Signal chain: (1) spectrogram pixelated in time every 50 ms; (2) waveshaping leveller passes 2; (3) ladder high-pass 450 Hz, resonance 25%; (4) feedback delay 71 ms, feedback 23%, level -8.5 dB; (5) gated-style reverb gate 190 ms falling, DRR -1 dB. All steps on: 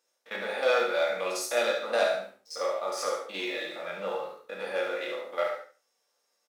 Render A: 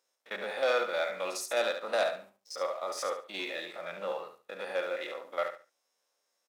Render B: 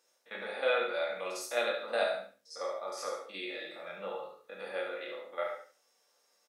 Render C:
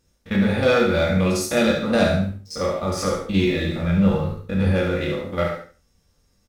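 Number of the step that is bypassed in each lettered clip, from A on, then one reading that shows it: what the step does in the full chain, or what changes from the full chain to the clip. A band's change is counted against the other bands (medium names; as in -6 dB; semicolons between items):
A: 5, echo-to-direct 2.0 dB to -8.5 dB; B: 2, loudness change -5.5 LU; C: 3, 250 Hz band +18.5 dB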